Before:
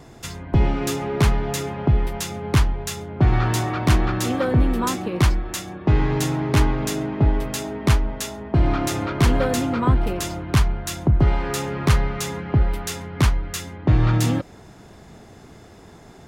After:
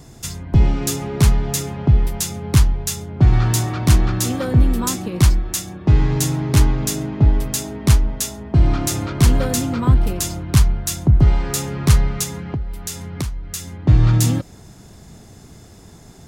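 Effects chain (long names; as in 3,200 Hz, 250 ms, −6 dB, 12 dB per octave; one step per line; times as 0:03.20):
bass and treble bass +8 dB, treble +12 dB
0:12.23–0:13.71: downward compressor 4 to 1, threshold −21 dBFS, peak gain reduction 13.5 dB
level −3 dB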